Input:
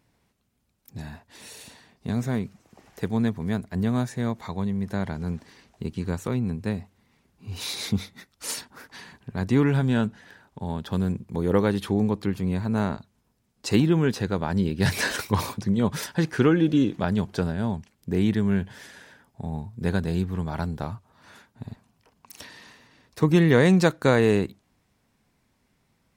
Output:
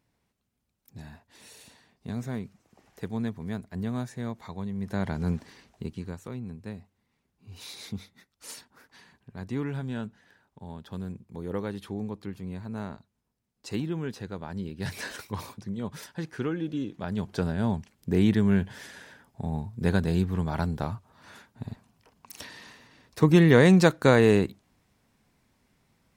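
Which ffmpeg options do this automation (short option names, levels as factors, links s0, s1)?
-af "volume=4.73,afade=t=in:st=4.71:d=0.58:silence=0.354813,afade=t=out:st=5.29:d=0.87:silence=0.223872,afade=t=in:st=16.97:d=0.73:silence=0.266073"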